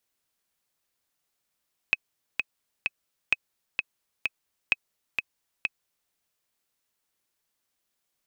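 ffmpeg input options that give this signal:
ffmpeg -f lavfi -i "aevalsrc='pow(10,(-7.5-5*gte(mod(t,3*60/129),60/129))/20)*sin(2*PI*2550*mod(t,60/129))*exp(-6.91*mod(t,60/129)/0.03)':duration=4.18:sample_rate=44100" out.wav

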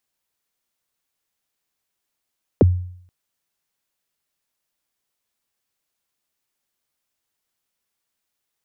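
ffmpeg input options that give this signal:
ffmpeg -f lavfi -i "aevalsrc='0.473*pow(10,-3*t/0.63)*sin(2*PI*(600*0.023/log(90/600)*(exp(log(90/600)*min(t,0.023)/0.023)-1)+90*max(t-0.023,0)))':duration=0.48:sample_rate=44100" out.wav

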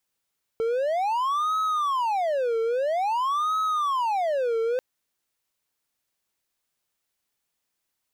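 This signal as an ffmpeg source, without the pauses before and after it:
ffmpeg -f lavfi -i "aevalsrc='0.1*(1-4*abs(mod((865.5*t-414.5/(2*PI*0.5)*sin(2*PI*0.5*t))+0.25,1)-0.5))':duration=4.19:sample_rate=44100" out.wav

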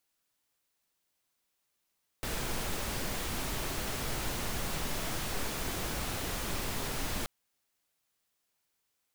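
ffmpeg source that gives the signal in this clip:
ffmpeg -f lavfi -i "anoisesrc=color=pink:amplitude=0.0966:duration=5.03:sample_rate=44100:seed=1" out.wav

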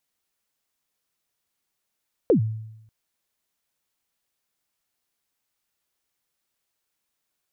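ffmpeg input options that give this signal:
ffmpeg -f lavfi -i "aevalsrc='0.251*pow(10,-3*t/0.87)*sin(2*PI*(540*0.104/log(110/540)*(exp(log(110/540)*min(t,0.104)/0.104)-1)+110*max(t-0.104,0)))':duration=0.59:sample_rate=44100" out.wav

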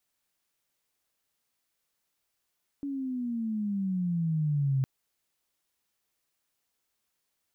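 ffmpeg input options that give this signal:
ffmpeg -f lavfi -i "aevalsrc='pow(10,(-23+8*(t/2.01-1))/20)*sin(2*PI*285*2.01/(-13.5*log(2)/12)*(exp(-13.5*log(2)/12*t/2.01)-1))':duration=2.01:sample_rate=44100" out.wav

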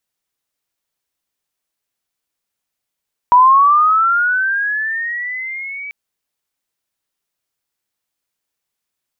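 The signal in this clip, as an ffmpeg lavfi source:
ffmpeg -f lavfi -i "aevalsrc='pow(10,(-4.5-21*t/2.59)/20)*sin(2*PI*(970*t+1330*t*t/(2*2.59)))':duration=2.59:sample_rate=44100" out.wav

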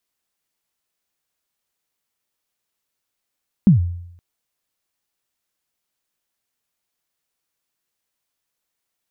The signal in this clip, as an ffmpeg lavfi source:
ffmpeg -f lavfi -i "aevalsrc='0.562*pow(10,-3*t/0.76)*sin(2*PI*(220*0.126/log(87/220)*(exp(log(87/220)*min(t,0.126)/0.126)-1)+87*max(t-0.126,0)))':duration=0.52:sample_rate=44100" out.wav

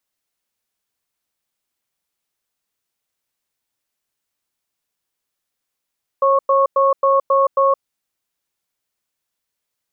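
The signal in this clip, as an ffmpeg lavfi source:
ffmpeg -f lavfi -i "aevalsrc='0.2*(sin(2*PI*545*t)+sin(2*PI*1100*t))*clip(min(mod(t,0.27),0.17-mod(t,0.27))/0.005,0,1)':duration=1.52:sample_rate=44100" out.wav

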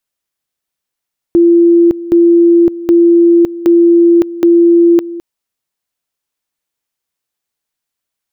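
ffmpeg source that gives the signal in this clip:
ffmpeg -f lavfi -i "aevalsrc='pow(10,(-3.5-16.5*gte(mod(t,0.77),0.56))/20)*sin(2*PI*341*t)':duration=3.85:sample_rate=44100" out.wav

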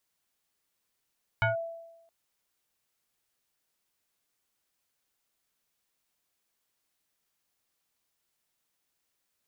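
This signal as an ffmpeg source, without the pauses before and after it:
ffmpeg -f lavfi -i "aevalsrc='0.0944*pow(10,-3*t/0.98)*sin(2*PI*666*t+2.1*clip(1-t/0.14,0,1)*sin(2*PI*1.17*666*t))':duration=0.67:sample_rate=44100" out.wav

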